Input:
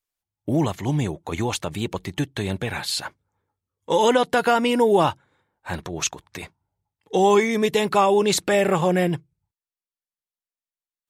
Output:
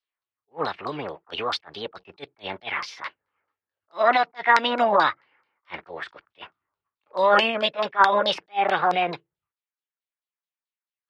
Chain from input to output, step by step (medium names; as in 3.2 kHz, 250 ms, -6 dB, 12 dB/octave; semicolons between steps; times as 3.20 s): three-band isolator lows -19 dB, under 300 Hz, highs -14 dB, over 3.6 kHz; LFO low-pass saw down 4.6 Hz 970–3700 Hz; formant shift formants +5 st; attacks held to a fixed rise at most 420 dB/s; trim -1 dB